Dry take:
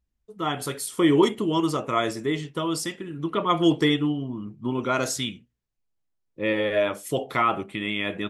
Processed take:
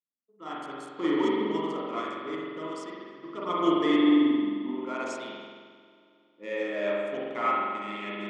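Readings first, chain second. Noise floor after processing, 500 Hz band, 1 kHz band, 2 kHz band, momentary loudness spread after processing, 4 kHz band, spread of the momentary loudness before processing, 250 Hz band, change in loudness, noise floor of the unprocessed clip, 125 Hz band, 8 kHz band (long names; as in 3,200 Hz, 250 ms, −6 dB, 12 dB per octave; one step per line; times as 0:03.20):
−65 dBFS, −5.0 dB, −4.0 dB, −6.0 dB, 18 LU, −9.0 dB, 10 LU, −2.0 dB, −3.5 dB, −77 dBFS, −16.5 dB, below −15 dB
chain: adaptive Wiener filter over 9 samples
Chebyshev band-pass filter 220–7,500 Hz, order 3
on a send: feedback echo with a low-pass in the loop 311 ms, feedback 68%, level −23.5 dB
on the sum: spring reverb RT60 2.6 s, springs 44 ms, chirp 40 ms, DRR −6 dB
expander for the loud parts 1.5 to 1, over −36 dBFS
level −7.5 dB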